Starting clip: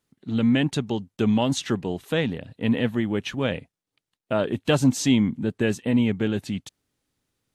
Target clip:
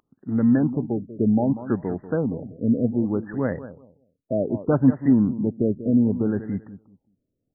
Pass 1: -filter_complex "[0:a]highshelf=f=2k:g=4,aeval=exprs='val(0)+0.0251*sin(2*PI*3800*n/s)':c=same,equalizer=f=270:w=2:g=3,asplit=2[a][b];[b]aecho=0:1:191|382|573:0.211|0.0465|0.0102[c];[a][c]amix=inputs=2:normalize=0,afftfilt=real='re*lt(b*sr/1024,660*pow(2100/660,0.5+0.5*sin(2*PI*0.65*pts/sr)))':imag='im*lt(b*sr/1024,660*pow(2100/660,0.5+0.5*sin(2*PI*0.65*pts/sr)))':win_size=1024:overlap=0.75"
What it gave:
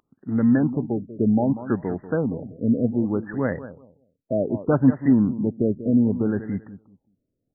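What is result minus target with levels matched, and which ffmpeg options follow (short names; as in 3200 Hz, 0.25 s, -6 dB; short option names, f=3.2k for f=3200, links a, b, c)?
2000 Hz band +3.0 dB
-filter_complex "[0:a]highshelf=f=2k:g=-4.5,aeval=exprs='val(0)+0.0251*sin(2*PI*3800*n/s)':c=same,equalizer=f=270:w=2:g=3,asplit=2[a][b];[b]aecho=0:1:191|382|573:0.211|0.0465|0.0102[c];[a][c]amix=inputs=2:normalize=0,afftfilt=real='re*lt(b*sr/1024,660*pow(2100/660,0.5+0.5*sin(2*PI*0.65*pts/sr)))':imag='im*lt(b*sr/1024,660*pow(2100/660,0.5+0.5*sin(2*PI*0.65*pts/sr)))':win_size=1024:overlap=0.75"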